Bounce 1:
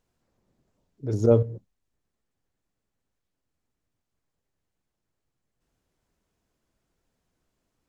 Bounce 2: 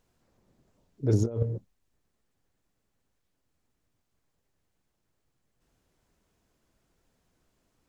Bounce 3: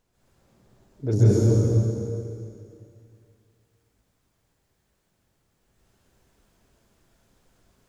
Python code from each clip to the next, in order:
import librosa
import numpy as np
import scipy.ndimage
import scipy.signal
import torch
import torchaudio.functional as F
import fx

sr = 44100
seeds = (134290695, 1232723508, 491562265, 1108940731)

y1 = fx.over_compress(x, sr, threshold_db=-24.0, ratio=-0.5)
y2 = fx.rev_plate(y1, sr, seeds[0], rt60_s=2.5, hf_ratio=0.95, predelay_ms=115, drr_db=-9.5)
y2 = y2 * librosa.db_to_amplitude(-1.0)